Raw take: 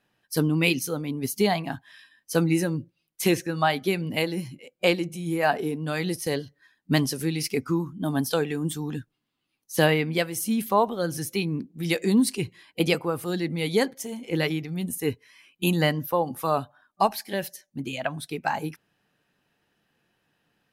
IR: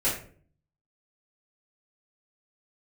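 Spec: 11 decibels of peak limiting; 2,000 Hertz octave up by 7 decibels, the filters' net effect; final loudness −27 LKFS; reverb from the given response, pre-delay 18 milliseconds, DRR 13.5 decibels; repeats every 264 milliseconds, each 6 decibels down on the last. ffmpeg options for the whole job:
-filter_complex "[0:a]equalizer=frequency=2000:width_type=o:gain=8.5,alimiter=limit=-14.5dB:level=0:latency=1,aecho=1:1:264|528|792|1056|1320|1584:0.501|0.251|0.125|0.0626|0.0313|0.0157,asplit=2[link_01][link_02];[1:a]atrim=start_sample=2205,adelay=18[link_03];[link_02][link_03]afir=irnorm=-1:irlink=0,volume=-24dB[link_04];[link_01][link_04]amix=inputs=2:normalize=0,volume=-0.5dB"

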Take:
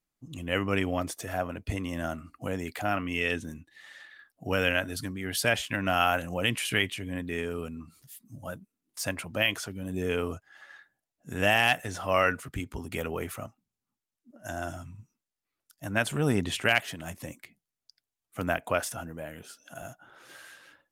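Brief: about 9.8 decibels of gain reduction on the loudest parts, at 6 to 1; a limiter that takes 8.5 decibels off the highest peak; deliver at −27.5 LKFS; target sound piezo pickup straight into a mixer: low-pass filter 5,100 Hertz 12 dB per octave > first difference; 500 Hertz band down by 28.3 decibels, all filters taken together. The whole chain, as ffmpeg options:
ffmpeg -i in.wav -af "equalizer=frequency=500:width_type=o:gain=-8.5,acompressor=threshold=-31dB:ratio=6,alimiter=level_in=1dB:limit=-24dB:level=0:latency=1,volume=-1dB,lowpass=5100,aderivative,volume=24dB" out.wav

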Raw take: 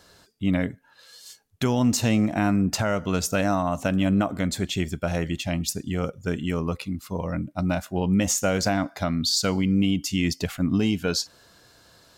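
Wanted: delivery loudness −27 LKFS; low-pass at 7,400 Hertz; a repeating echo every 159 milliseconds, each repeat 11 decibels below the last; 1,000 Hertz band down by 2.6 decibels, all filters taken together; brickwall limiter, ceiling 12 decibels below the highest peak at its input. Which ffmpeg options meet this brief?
ffmpeg -i in.wav -af "lowpass=7400,equalizer=frequency=1000:width_type=o:gain=-4,alimiter=level_in=0.5dB:limit=-24dB:level=0:latency=1,volume=-0.5dB,aecho=1:1:159|318|477:0.282|0.0789|0.0221,volume=6.5dB" out.wav

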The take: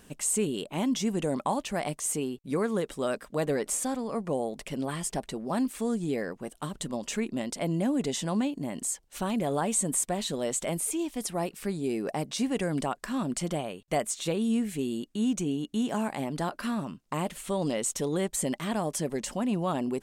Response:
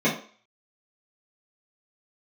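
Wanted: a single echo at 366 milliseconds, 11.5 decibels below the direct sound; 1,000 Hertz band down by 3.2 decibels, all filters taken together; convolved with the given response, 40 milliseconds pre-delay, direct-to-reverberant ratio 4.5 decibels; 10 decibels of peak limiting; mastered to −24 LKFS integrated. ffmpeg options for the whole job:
-filter_complex "[0:a]equalizer=frequency=1000:width_type=o:gain=-4.5,alimiter=level_in=1.5dB:limit=-24dB:level=0:latency=1,volume=-1.5dB,aecho=1:1:366:0.266,asplit=2[link_01][link_02];[1:a]atrim=start_sample=2205,adelay=40[link_03];[link_02][link_03]afir=irnorm=-1:irlink=0,volume=-20.5dB[link_04];[link_01][link_04]amix=inputs=2:normalize=0,volume=6.5dB"

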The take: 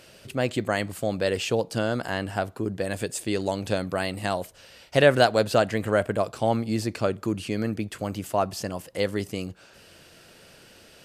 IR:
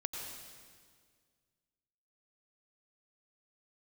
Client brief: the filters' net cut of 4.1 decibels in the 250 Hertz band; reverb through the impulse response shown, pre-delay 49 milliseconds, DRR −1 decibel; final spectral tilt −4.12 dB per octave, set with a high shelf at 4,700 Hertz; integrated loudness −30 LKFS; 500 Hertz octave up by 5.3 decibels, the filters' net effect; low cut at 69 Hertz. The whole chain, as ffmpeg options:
-filter_complex "[0:a]highpass=69,equalizer=frequency=250:width_type=o:gain=-8.5,equalizer=frequency=500:width_type=o:gain=8,highshelf=frequency=4700:gain=7,asplit=2[link_01][link_02];[1:a]atrim=start_sample=2205,adelay=49[link_03];[link_02][link_03]afir=irnorm=-1:irlink=0,volume=0dB[link_04];[link_01][link_04]amix=inputs=2:normalize=0,volume=-10.5dB"

